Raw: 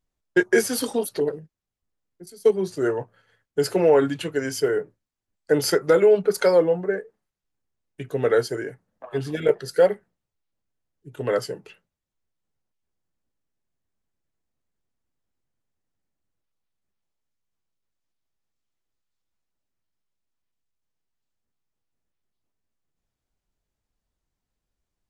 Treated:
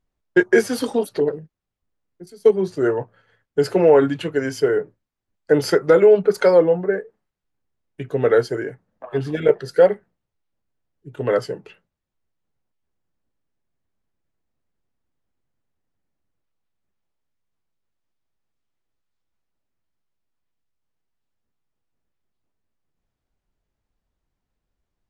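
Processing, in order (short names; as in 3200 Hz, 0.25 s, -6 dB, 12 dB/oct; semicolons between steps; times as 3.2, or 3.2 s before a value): LPF 2700 Hz 6 dB/oct; gain +4 dB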